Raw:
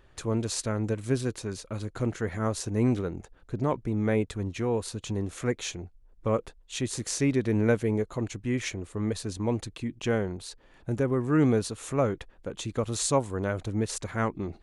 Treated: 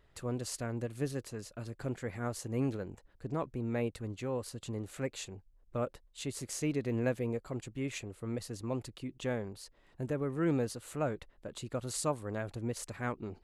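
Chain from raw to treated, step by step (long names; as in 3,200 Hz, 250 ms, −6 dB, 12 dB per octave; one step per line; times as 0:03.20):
wrong playback speed 44.1 kHz file played as 48 kHz
level −8 dB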